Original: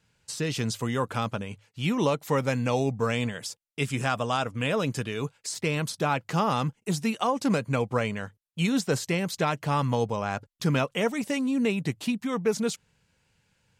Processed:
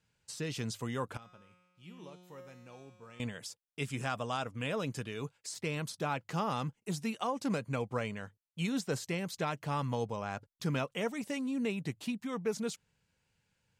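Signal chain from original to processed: 1.17–3.20 s: feedback comb 180 Hz, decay 1.5 s, mix 90%; trim -8.5 dB

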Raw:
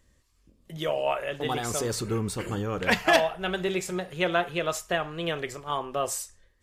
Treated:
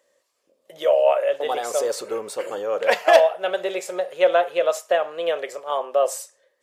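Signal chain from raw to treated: resonant high-pass 550 Hz, resonance Q 4.7

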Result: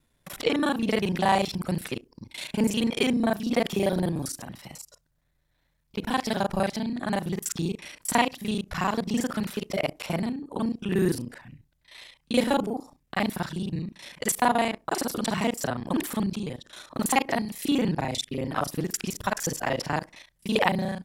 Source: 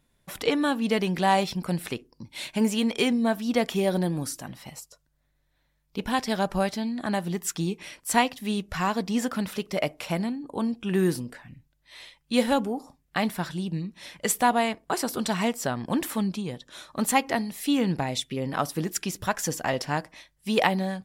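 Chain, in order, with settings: time reversed locally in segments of 33 ms

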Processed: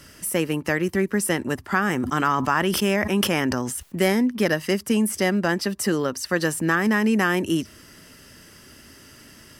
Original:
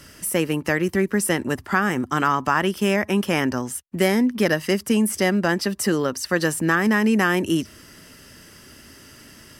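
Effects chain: 1.79–4.13 s: decay stretcher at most 39 dB/s; trim -1.5 dB

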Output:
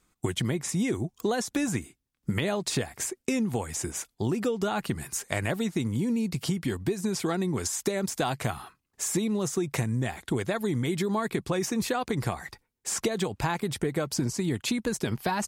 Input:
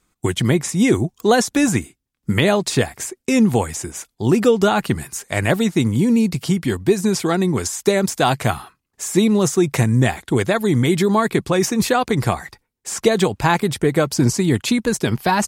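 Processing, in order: compression, threshold -22 dBFS, peak gain reduction 12.5 dB; trim -3 dB

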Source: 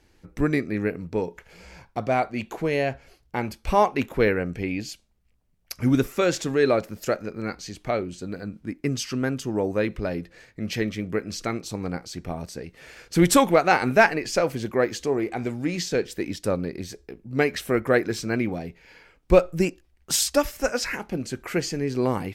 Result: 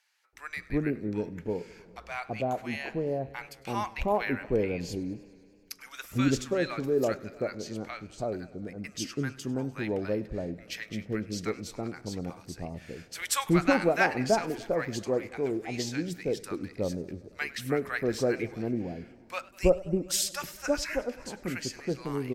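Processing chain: bands offset in time highs, lows 330 ms, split 950 Hz; modulated delay 100 ms, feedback 74%, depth 98 cents, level -21 dB; trim -5.5 dB

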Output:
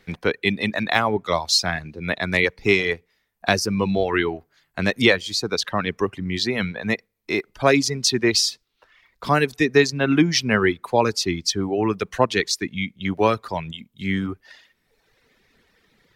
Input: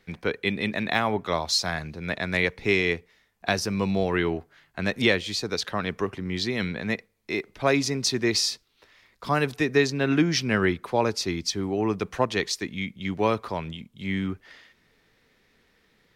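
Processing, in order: reverb removal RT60 1.2 s; trim +5.5 dB

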